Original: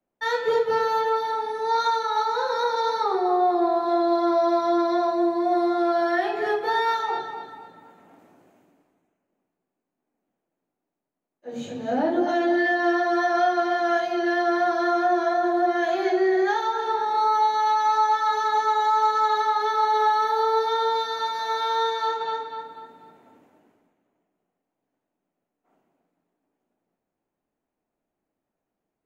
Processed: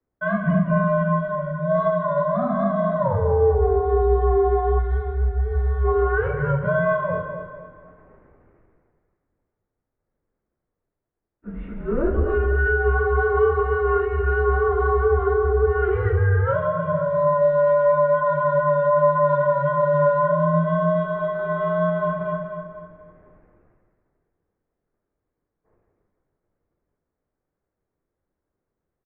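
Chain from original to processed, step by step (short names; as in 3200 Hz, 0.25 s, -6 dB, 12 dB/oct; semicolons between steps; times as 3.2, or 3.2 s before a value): 12.38–12.88 notch comb 200 Hz; mistuned SSB -280 Hz 230–2300 Hz; outdoor echo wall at 28 m, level -12 dB; 4.79–5.84 spectral gain 210–1200 Hz -11 dB; gain +2.5 dB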